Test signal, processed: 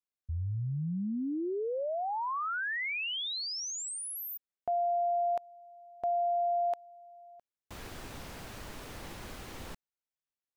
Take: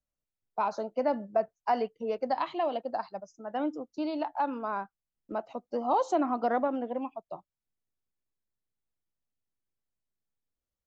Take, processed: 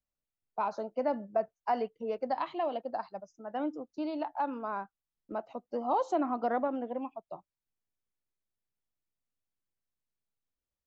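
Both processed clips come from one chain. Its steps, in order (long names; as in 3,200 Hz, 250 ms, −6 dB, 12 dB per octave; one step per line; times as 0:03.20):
high-shelf EQ 4,800 Hz −7 dB
level −2.5 dB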